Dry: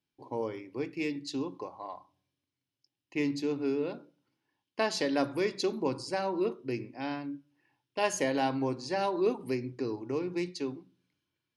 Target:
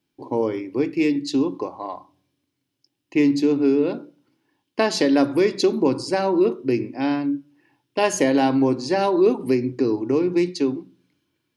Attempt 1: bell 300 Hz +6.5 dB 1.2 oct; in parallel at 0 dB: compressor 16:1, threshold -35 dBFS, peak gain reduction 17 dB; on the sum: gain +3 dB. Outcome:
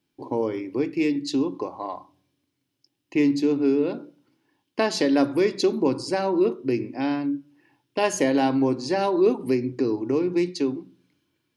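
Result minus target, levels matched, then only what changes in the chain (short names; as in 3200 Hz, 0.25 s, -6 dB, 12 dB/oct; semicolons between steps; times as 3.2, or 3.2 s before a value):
compressor: peak gain reduction +10 dB
change: compressor 16:1, threshold -24.5 dBFS, peak gain reduction 7 dB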